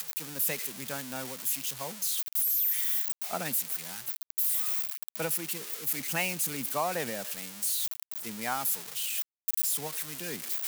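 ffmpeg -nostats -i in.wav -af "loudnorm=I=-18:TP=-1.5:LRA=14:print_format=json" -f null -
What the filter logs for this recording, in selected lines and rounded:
"input_i" : "-30.2",
"input_tp" : "-16.5",
"input_lra" : "3.2",
"input_thresh" : "-40.2",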